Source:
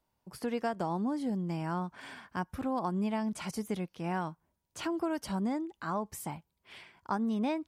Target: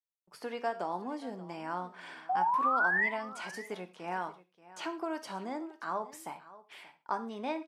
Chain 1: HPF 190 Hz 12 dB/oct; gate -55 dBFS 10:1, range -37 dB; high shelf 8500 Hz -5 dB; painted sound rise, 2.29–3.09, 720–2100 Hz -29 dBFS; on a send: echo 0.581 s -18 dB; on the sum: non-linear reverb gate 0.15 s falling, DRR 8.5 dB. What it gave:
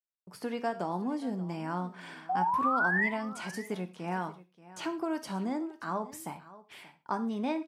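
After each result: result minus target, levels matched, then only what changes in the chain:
250 Hz band +6.5 dB; 8000 Hz band +2.5 dB
change: HPF 420 Hz 12 dB/oct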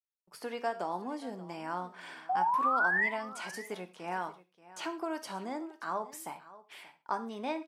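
8000 Hz band +4.0 dB
change: high shelf 8500 Hz -13.5 dB

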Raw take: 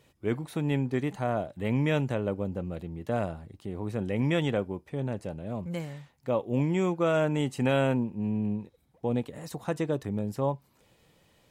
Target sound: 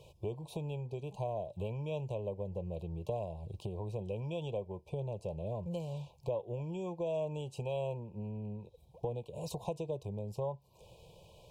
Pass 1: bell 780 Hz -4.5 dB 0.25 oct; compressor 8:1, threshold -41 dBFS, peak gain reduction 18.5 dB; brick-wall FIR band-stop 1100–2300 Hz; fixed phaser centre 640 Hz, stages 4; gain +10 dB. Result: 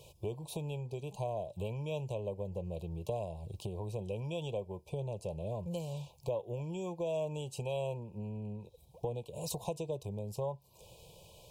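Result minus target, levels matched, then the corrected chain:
8000 Hz band +8.0 dB
bell 780 Hz -4.5 dB 0.25 oct; compressor 8:1, threshold -41 dBFS, peak gain reduction 18.5 dB; brick-wall FIR band-stop 1100–2300 Hz; high shelf 4800 Hz -11.5 dB; fixed phaser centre 640 Hz, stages 4; gain +10 dB

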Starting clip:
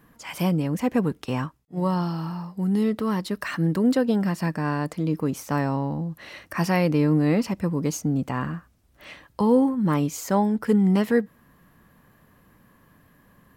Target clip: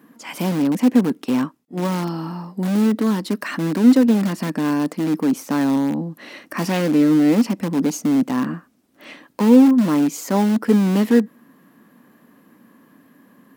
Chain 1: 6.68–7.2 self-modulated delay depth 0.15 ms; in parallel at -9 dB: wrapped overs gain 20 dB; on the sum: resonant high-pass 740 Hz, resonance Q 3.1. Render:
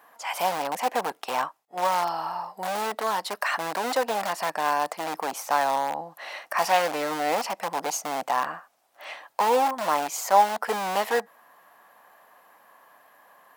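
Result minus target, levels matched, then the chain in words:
250 Hz band -17.0 dB
6.68–7.2 self-modulated delay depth 0.15 ms; in parallel at -9 dB: wrapped overs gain 20 dB; on the sum: resonant high-pass 250 Hz, resonance Q 3.1

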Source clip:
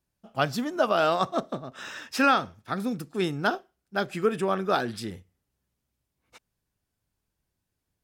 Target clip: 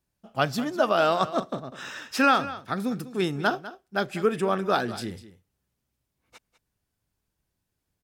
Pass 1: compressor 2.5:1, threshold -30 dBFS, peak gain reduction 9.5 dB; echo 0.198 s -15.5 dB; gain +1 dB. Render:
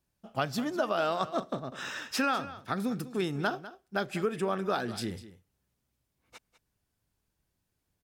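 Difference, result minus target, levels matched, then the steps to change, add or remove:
compressor: peak gain reduction +9.5 dB
remove: compressor 2.5:1, threshold -30 dBFS, peak gain reduction 9.5 dB

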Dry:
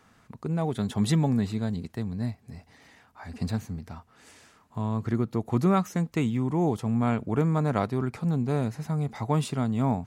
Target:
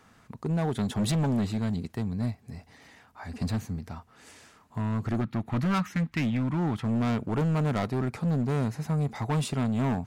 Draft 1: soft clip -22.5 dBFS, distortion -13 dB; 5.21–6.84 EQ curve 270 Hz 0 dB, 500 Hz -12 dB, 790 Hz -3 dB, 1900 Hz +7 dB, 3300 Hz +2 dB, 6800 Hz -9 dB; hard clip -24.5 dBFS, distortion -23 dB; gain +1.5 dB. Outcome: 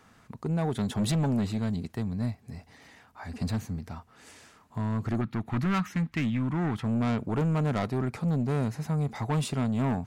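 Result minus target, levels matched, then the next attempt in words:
soft clip: distortion +12 dB
soft clip -13.5 dBFS, distortion -25 dB; 5.21–6.84 EQ curve 270 Hz 0 dB, 500 Hz -12 dB, 790 Hz -3 dB, 1900 Hz +7 dB, 3300 Hz +2 dB, 6800 Hz -9 dB; hard clip -24.5 dBFS, distortion -12 dB; gain +1.5 dB

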